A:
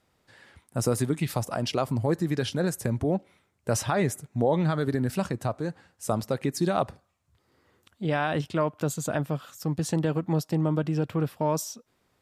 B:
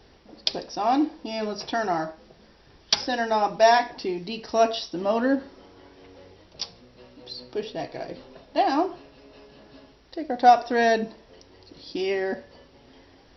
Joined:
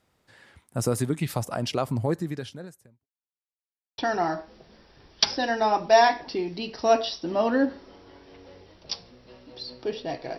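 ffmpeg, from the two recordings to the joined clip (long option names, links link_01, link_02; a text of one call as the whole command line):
ffmpeg -i cue0.wav -i cue1.wav -filter_complex "[0:a]apad=whole_dur=10.38,atrim=end=10.38,asplit=2[link_01][link_02];[link_01]atrim=end=3.07,asetpts=PTS-STARTPTS,afade=type=out:start_time=2.07:duration=1:curve=qua[link_03];[link_02]atrim=start=3.07:end=3.98,asetpts=PTS-STARTPTS,volume=0[link_04];[1:a]atrim=start=1.68:end=8.08,asetpts=PTS-STARTPTS,afade=type=in:duration=0.004:curve=hsin[link_05];[link_03][link_04][link_05]concat=n=3:v=0:a=1" out.wav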